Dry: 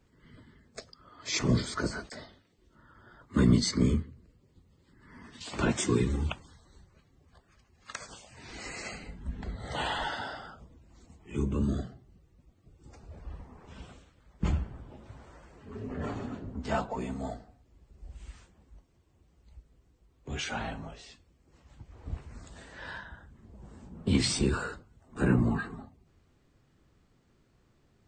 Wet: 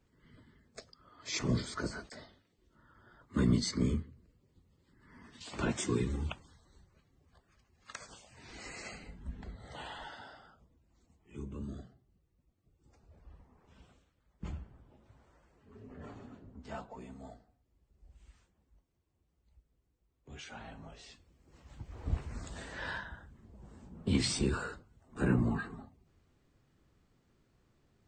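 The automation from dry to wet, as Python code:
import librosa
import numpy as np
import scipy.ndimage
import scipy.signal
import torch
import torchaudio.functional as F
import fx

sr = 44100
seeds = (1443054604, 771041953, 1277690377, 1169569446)

y = fx.gain(x, sr, db=fx.line((9.29, -5.5), (9.82, -13.0), (20.64, -13.0), (21.04, -3.0), (21.98, 4.0), (22.73, 4.0), (23.51, -4.0)))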